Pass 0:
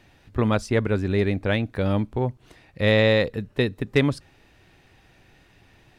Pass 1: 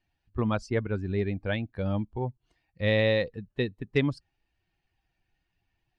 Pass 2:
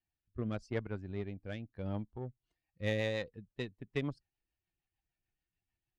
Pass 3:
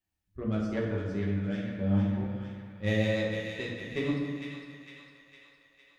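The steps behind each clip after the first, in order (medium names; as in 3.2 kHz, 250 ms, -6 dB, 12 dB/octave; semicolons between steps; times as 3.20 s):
expander on every frequency bin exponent 1.5; low-pass 5.5 kHz 12 dB/octave; trim -4 dB
Chebyshev shaper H 3 -23 dB, 7 -30 dB, 8 -35 dB, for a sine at -12.5 dBFS; rotary cabinet horn 0.85 Hz, later 6.7 Hz, at 2.00 s; trim -6.5 dB
feedback echo behind a high-pass 456 ms, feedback 57%, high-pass 1.5 kHz, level -5 dB; reverberation RT60 1.7 s, pre-delay 5 ms, DRR -4.5 dB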